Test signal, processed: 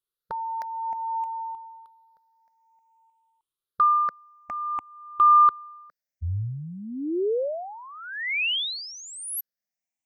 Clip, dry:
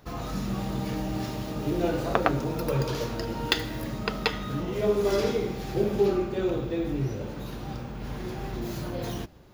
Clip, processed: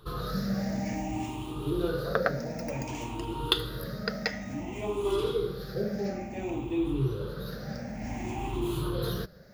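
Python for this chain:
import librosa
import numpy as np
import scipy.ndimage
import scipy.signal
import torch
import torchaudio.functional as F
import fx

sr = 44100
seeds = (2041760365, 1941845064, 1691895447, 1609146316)

y = fx.spec_ripple(x, sr, per_octave=0.63, drift_hz=0.56, depth_db=17)
y = fx.rider(y, sr, range_db=5, speed_s=2.0)
y = F.gain(torch.from_numpy(y), -6.5).numpy()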